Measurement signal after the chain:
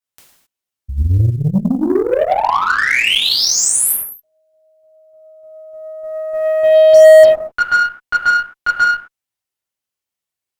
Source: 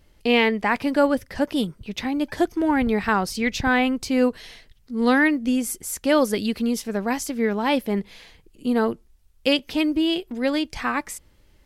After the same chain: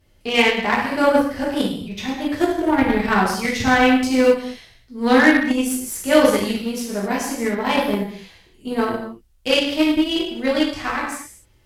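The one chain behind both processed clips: non-linear reverb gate 0.29 s falling, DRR -6.5 dB; short-mantissa float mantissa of 6-bit; added harmonics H 7 -25 dB, 8 -33 dB, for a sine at 0 dBFS; gain -2 dB

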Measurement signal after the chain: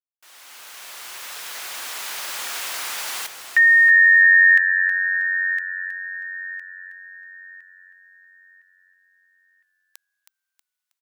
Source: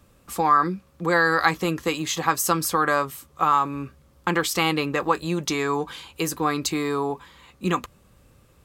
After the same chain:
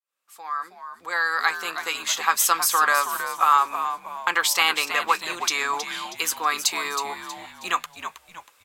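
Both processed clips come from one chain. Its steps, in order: opening faded in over 2.58 s; HPF 1100 Hz 12 dB/oct; frequency-shifting echo 0.319 s, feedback 38%, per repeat -91 Hz, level -9.5 dB; gain +5 dB

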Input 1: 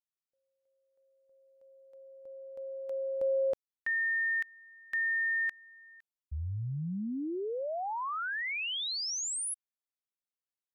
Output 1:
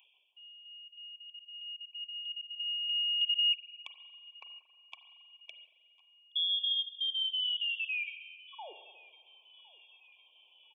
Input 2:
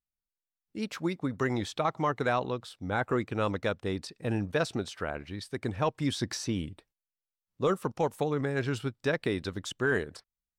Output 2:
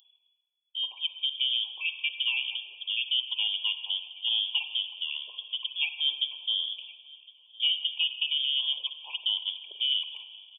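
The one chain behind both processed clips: random spectral dropouts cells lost 28%; in parallel at -2 dB: compressor, threshold -40 dBFS; on the sum: brick-wall FIR band-stop 1100–2300 Hz; inverted band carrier 3400 Hz; reverse; upward compressor, threshold -34 dBFS; reverse; HPF 380 Hz 24 dB/oct; differentiator; feedback echo 1.059 s, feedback 58%, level -23.5 dB; spring tank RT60 1.6 s, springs 38/45 ms, chirp 50 ms, DRR 8.5 dB; gain +7 dB

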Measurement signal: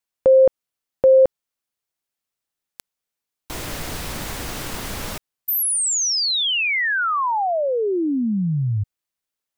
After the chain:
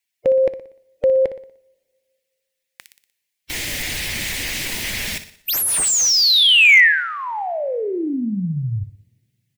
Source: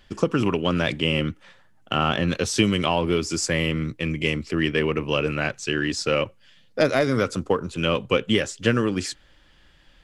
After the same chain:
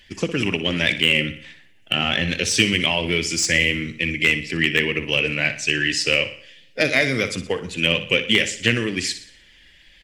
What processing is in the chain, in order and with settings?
bin magnitudes rounded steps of 15 dB; resonant high shelf 1600 Hz +7.5 dB, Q 3; on a send: feedback echo 60 ms, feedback 46%, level -12 dB; on the sum: two-slope reverb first 0.67 s, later 2.2 s, from -18 dB, DRR 20 dB; slew limiter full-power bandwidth 1300 Hz; gain -1.5 dB

